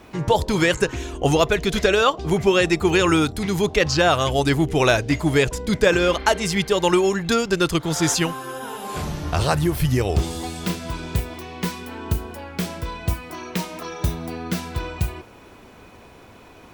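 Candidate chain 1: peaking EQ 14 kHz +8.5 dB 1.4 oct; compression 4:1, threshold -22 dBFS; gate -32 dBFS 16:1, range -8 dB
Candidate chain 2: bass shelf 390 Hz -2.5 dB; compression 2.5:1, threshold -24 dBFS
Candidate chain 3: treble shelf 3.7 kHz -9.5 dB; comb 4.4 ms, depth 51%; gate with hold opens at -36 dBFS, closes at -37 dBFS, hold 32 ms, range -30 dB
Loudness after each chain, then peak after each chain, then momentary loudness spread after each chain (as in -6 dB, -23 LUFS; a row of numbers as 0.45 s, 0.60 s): -26.5 LUFS, -27.5 LUFS, -21.5 LUFS; -8.5 dBFS, -9.5 dBFS, -3.0 dBFS; 7 LU, 9 LU, 12 LU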